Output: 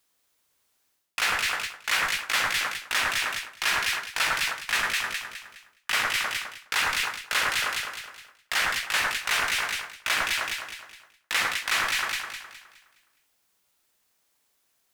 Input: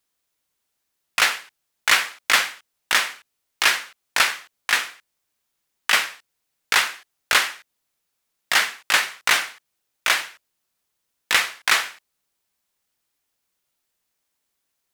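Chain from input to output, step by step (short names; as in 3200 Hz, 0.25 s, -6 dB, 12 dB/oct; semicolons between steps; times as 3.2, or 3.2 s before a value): rattling part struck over -52 dBFS, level -15 dBFS; in parallel at -12 dB: Schmitt trigger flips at -22.5 dBFS; on the sum: low shelf 380 Hz -3 dB; echo with dull and thin repeats by turns 0.104 s, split 1700 Hz, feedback 61%, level -4 dB; reverse; compressor 5:1, threshold -29 dBFS, peak gain reduction 16 dB; reverse; gain +5 dB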